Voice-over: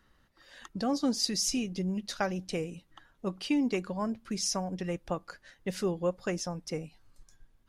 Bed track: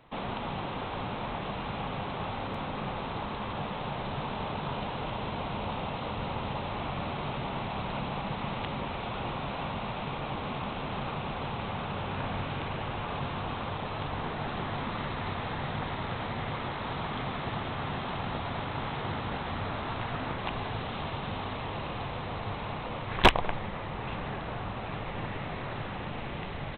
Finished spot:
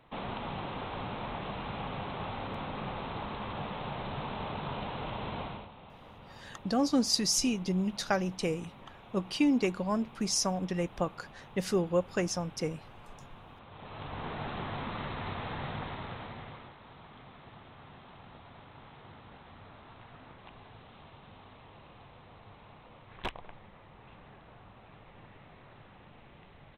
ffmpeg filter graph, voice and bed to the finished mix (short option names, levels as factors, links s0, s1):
-filter_complex "[0:a]adelay=5900,volume=1.26[s0];[1:a]volume=3.55,afade=t=out:st=5.4:d=0.29:silence=0.188365,afade=t=in:st=13.69:d=0.64:silence=0.199526,afade=t=out:st=15.66:d=1.1:silence=0.188365[s1];[s0][s1]amix=inputs=2:normalize=0"